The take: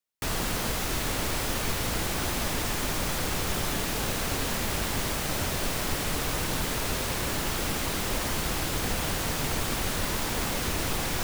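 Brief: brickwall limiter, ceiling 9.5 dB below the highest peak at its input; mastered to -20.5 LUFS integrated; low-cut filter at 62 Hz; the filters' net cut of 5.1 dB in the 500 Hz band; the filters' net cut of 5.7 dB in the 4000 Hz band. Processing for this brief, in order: HPF 62 Hz; bell 500 Hz -6.5 dB; bell 4000 Hz -7.5 dB; gain +15 dB; limiter -12.5 dBFS

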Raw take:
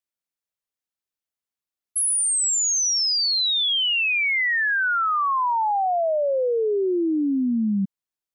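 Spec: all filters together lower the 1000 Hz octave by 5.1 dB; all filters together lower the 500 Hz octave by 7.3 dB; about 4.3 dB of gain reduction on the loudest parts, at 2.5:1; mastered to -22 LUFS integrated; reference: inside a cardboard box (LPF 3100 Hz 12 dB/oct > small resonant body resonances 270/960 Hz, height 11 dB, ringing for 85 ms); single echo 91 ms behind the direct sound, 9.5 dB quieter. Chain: bell 500 Hz -8.5 dB; bell 1000 Hz -4 dB; compressor 2.5:1, threshold -27 dBFS; LPF 3100 Hz 12 dB/oct; echo 91 ms -9.5 dB; small resonant body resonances 270/960 Hz, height 11 dB, ringing for 85 ms; gain +3.5 dB

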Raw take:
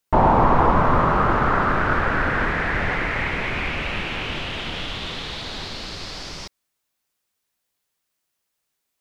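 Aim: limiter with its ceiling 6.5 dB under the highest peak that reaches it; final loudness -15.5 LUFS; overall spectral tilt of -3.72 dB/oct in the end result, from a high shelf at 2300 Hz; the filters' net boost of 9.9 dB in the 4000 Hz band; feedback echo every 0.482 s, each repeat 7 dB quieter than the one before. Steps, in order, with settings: high shelf 2300 Hz +7 dB; bell 4000 Hz +6.5 dB; limiter -9.5 dBFS; feedback echo 0.482 s, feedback 45%, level -7 dB; gain +3.5 dB

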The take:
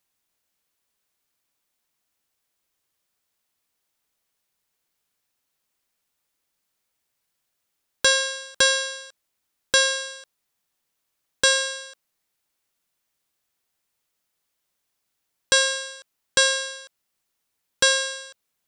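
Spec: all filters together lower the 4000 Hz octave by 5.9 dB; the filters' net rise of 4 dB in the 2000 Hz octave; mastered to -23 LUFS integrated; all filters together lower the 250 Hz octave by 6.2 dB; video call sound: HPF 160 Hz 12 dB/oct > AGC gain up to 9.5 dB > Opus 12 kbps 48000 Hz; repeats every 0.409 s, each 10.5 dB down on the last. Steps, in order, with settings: HPF 160 Hz 12 dB/oct; bell 250 Hz -8 dB; bell 2000 Hz +7.5 dB; bell 4000 Hz -9 dB; feedback echo 0.409 s, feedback 30%, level -10.5 dB; AGC gain up to 9.5 dB; gain -2 dB; Opus 12 kbps 48000 Hz

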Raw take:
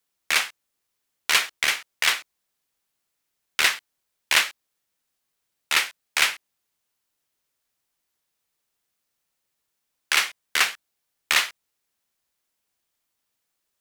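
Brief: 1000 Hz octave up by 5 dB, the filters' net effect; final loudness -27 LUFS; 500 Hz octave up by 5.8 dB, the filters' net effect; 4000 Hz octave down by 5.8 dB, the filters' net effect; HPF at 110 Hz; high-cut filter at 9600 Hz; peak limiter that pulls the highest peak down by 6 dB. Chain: HPF 110 Hz; LPF 9600 Hz; bell 500 Hz +5.5 dB; bell 1000 Hz +6 dB; bell 4000 Hz -8.5 dB; limiter -10.5 dBFS

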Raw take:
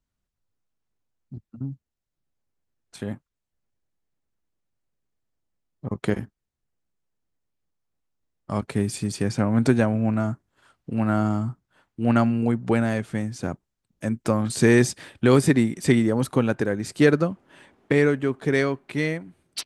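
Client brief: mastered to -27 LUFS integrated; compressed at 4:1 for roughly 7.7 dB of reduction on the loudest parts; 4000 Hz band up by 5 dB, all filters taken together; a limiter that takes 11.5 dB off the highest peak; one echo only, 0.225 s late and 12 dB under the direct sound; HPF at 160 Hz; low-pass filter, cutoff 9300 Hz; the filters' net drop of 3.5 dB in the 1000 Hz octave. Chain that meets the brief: HPF 160 Hz; LPF 9300 Hz; bell 1000 Hz -5.5 dB; bell 4000 Hz +6.5 dB; compressor 4:1, threshold -22 dBFS; limiter -22 dBFS; echo 0.225 s -12 dB; gain +5.5 dB

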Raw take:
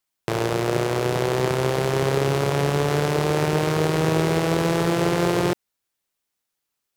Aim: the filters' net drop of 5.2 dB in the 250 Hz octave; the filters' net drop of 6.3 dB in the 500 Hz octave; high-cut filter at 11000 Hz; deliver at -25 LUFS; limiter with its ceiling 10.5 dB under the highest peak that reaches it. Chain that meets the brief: LPF 11000 Hz; bell 250 Hz -7.5 dB; bell 500 Hz -5.5 dB; gain +7.5 dB; limiter -10.5 dBFS

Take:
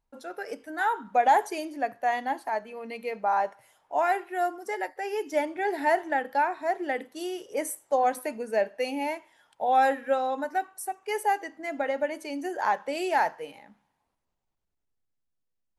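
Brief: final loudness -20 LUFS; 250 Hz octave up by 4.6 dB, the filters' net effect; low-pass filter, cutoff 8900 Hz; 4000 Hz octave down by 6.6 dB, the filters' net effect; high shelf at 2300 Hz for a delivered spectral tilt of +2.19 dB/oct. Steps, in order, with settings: LPF 8900 Hz; bell 250 Hz +6 dB; high shelf 2300 Hz -5 dB; bell 4000 Hz -4.5 dB; gain +8.5 dB

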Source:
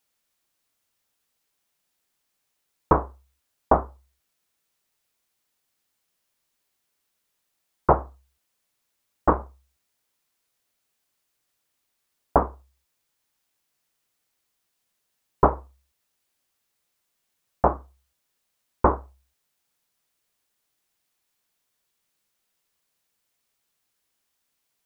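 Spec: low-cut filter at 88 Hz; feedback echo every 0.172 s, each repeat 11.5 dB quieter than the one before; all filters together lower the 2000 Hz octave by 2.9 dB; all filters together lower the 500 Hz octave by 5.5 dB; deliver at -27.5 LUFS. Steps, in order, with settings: HPF 88 Hz; bell 500 Hz -7 dB; bell 2000 Hz -4 dB; feedback echo 0.172 s, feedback 27%, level -11.5 dB; gain +1.5 dB

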